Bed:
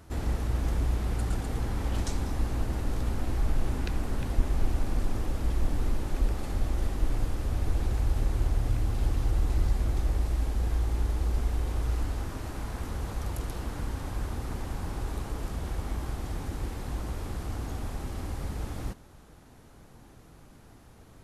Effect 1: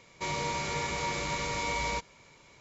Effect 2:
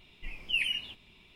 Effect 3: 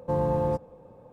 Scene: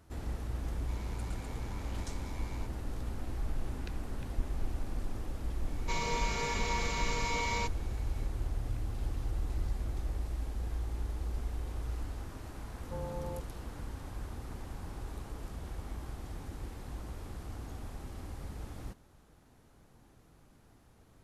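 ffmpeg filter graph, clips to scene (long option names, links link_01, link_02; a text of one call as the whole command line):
ffmpeg -i bed.wav -i cue0.wav -i cue1.wav -i cue2.wav -filter_complex "[1:a]asplit=2[link_01][link_02];[0:a]volume=-8.5dB[link_03];[link_01]aeval=exprs='val(0)*sin(2*PI*46*n/s)':channel_layout=same[link_04];[link_02]aecho=1:1:4.5:0.86[link_05];[link_04]atrim=end=2.6,asetpts=PTS-STARTPTS,volume=-18dB,afade=type=in:duration=0.004:curve=hsin,afade=type=out:start_time=2.596:duration=0.004:curve=hsin,adelay=670[link_06];[link_05]atrim=end=2.6,asetpts=PTS-STARTPTS,volume=-4.5dB,afade=type=in:duration=0.004:curve=hsin,afade=type=out:start_time=2.596:duration=0.004:curve=hsin,adelay=5670[link_07];[3:a]atrim=end=1.12,asetpts=PTS-STARTPTS,volume=-15.5dB,afade=type=in:duration=0.004:curve=hsin,afade=type=out:start_time=1.116:duration=0.004:curve=hsin,adelay=12830[link_08];[link_03][link_06][link_07][link_08]amix=inputs=4:normalize=0" out.wav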